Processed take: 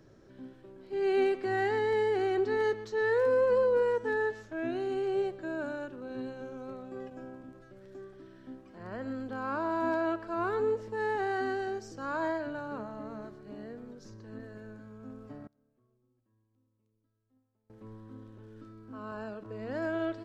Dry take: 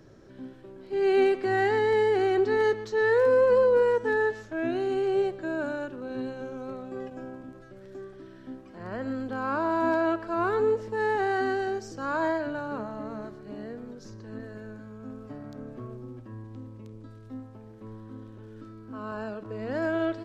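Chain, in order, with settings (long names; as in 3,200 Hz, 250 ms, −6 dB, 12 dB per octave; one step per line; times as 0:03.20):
0:15.47–0:17.70: noise gate −33 dBFS, range −28 dB
level −5 dB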